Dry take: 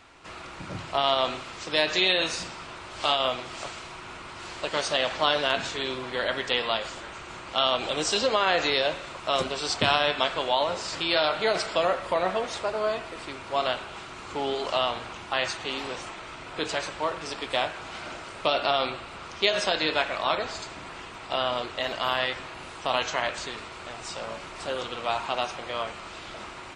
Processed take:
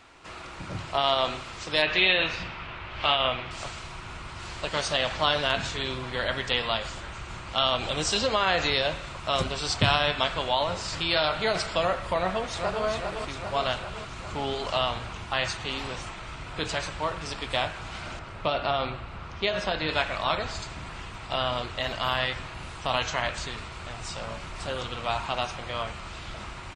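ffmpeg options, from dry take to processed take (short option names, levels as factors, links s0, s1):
-filter_complex "[0:a]asettb=1/sr,asplit=3[s0][s1][s2];[s0]atrim=end=1.824[s3];[s1]atrim=start=1.82:end=3.51,asetpts=PTS-STARTPTS,afade=t=in:d=0.004:c=qsin,afade=t=out:st=1.686:d=0.004:c=qsin,lowpass=f=2700:t=q:w=1.6[s4];[s2]atrim=start=3.506[s5];[s3][s4]acrossfade=d=0.004:c1=hsin:c2=qsin[s6];[s6][s5]acrossfade=d=0.004:c1=qsin:c2=hsin,asplit=2[s7][s8];[s8]afade=t=in:st=12.18:d=0.01,afade=t=out:st=12.84:d=0.01,aecho=0:1:400|800|1200|1600|2000|2400|2800|3200|3600|4000:0.562341|0.365522|0.237589|0.154433|0.100381|0.0652479|0.0424112|0.0275673|0.0179187|0.0116472[s9];[s7][s9]amix=inputs=2:normalize=0,asettb=1/sr,asplit=3[s10][s11][s12];[s10]atrim=end=18.194[s13];[s11]atrim=start=18.19:end=19.89,asetpts=PTS-STARTPTS,afade=t=in:d=0.004:c=qsin,afade=t=out:st=1.696:d=0.004:c=qsin,aemphasis=mode=reproduction:type=75kf[s14];[s12]atrim=start=19.886[s15];[s13][s14]acrossfade=d=0.004:c1=hsin:c2=qsin[s16];[s16][s15]acrossfade=d=0.004:c1=qsin:c2=hsin,asubboost=boost=4.5:cutoff=150"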